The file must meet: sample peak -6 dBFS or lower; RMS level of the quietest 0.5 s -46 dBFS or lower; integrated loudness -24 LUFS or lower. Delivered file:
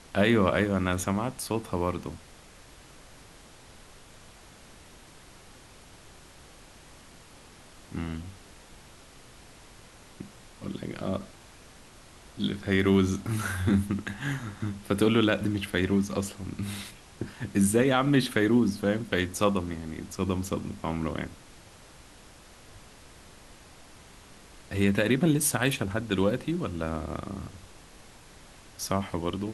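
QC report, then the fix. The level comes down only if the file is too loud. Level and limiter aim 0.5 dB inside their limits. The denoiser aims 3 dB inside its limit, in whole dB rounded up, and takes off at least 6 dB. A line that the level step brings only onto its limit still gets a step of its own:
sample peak -8.0 dBFS: pass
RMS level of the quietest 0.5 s -51 dBFS: pass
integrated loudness -28.0 LUFS: pass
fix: none needed

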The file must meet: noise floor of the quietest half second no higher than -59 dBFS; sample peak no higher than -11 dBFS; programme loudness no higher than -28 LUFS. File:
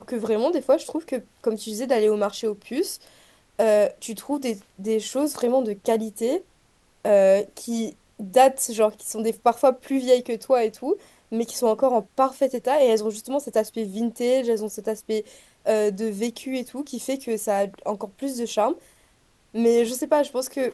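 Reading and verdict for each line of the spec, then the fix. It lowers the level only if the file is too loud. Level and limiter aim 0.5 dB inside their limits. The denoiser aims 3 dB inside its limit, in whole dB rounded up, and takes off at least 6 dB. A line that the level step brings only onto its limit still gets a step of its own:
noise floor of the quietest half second -61 dBFS: pass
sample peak -4.5 dBFS: fail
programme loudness -23.5 LUFS: fail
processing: trim -5 dB; peak limiter -11.5 dBFS

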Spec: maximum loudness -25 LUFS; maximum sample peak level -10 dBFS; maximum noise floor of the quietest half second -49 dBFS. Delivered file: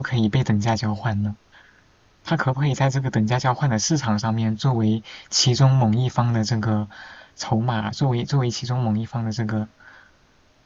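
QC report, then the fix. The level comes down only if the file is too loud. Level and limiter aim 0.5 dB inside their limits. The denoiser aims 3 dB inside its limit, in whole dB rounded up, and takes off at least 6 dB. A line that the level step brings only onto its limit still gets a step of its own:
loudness -22.0 LUFS: fail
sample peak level -5.0 dBFS: fail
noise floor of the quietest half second -57 dBFS: pass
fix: trim -3.5 dB; peak limiter -10.5 dBFS

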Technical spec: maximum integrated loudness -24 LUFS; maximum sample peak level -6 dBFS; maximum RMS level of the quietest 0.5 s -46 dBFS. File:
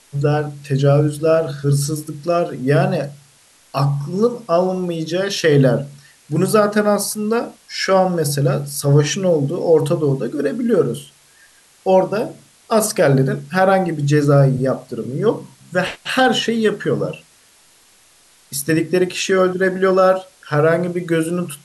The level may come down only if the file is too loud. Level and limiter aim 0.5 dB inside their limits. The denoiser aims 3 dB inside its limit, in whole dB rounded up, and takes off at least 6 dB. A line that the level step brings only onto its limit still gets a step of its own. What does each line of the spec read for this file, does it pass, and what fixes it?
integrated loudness -17.5 LUFS: fail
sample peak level -4.0 dBFS: fail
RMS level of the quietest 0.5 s -52 dBFS: pass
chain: trim -7 dB

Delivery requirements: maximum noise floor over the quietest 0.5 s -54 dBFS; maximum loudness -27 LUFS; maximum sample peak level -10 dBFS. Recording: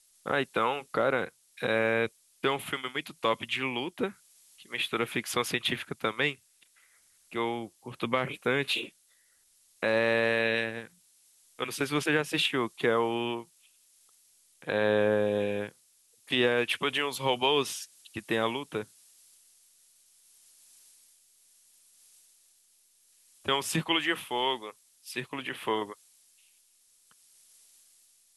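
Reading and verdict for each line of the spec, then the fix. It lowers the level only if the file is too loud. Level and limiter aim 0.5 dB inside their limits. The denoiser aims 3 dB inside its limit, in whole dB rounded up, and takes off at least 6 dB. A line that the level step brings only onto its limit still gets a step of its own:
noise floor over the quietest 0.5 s -66 dBFS: pass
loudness -29.5 LUFS: pass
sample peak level -11.5 dBFS: pass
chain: none needed

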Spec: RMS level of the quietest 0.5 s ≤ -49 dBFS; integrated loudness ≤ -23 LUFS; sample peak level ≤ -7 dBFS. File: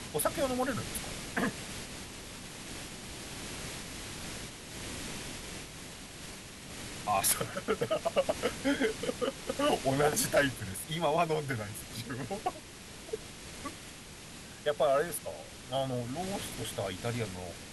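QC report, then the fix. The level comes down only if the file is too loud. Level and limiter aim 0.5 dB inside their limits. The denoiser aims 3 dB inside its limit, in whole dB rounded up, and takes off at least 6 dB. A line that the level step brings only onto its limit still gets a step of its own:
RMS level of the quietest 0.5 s -48 dBFS: fail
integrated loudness -34.0 LUFS: pass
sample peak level -14.5 dBFS: pass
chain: noise reduction 6 dB, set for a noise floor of -48 dBFS

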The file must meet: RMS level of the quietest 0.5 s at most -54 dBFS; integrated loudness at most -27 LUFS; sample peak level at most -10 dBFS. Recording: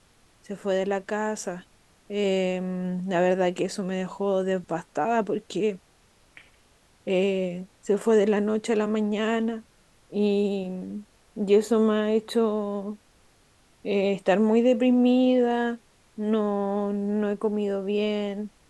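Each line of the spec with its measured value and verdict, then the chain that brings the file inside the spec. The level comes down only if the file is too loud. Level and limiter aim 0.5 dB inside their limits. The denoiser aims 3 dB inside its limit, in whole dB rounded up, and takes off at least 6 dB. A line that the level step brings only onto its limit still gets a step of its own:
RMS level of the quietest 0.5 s -60 dBFS: pass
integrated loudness -25.5 LUFS: fail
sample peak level -9.5 dBFS: fail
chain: trim -2 dB

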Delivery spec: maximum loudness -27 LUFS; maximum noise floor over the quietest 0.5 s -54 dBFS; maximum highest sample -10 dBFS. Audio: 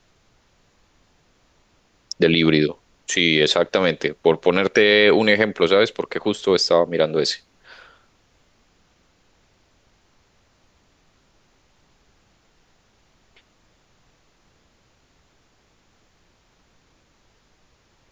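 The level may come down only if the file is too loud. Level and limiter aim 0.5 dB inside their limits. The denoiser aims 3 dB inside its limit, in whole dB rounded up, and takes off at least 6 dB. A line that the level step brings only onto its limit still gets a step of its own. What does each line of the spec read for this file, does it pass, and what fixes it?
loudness -18.0 LUFS: fail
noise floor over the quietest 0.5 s -61 dBFS: pass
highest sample -3.5 dBFS: fail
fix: trim -9.5 dB

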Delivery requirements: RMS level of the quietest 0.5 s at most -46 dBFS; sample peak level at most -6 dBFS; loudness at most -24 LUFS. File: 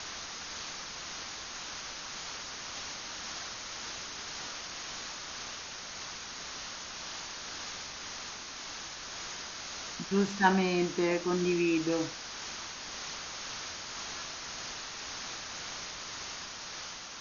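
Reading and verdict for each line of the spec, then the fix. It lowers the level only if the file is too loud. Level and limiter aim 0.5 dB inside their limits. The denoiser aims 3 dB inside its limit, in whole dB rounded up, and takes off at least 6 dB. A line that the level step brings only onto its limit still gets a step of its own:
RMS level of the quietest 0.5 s -43 dBFS: fail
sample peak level -9.0 dBFS: pass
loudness -35.5 LUFS: pass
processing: noise reduction 6 dB, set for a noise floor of -43 dBFS

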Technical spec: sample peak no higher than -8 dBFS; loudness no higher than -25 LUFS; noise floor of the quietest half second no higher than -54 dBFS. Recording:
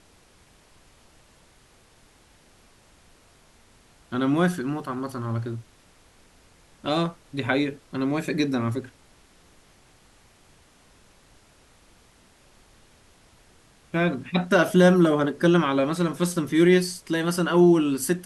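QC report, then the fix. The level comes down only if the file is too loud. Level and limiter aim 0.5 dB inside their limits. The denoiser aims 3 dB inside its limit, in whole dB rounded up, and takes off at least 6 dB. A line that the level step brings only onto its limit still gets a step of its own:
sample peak -6.0 dBFS: fail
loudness -23.0 LUFS: fail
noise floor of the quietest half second -57 dBFS: pass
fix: trim -2.5 dB

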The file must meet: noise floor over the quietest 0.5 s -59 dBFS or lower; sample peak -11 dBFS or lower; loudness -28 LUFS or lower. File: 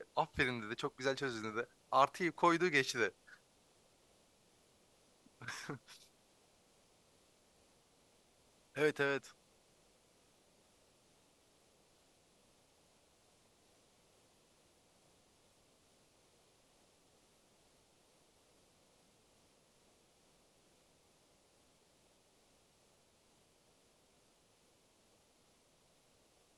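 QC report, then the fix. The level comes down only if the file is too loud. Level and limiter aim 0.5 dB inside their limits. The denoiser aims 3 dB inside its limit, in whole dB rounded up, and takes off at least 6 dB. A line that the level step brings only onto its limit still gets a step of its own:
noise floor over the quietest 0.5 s -71 dBFS: pass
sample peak -16.0 dBFS: pass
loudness -36.5 LUFS: pass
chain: none needed

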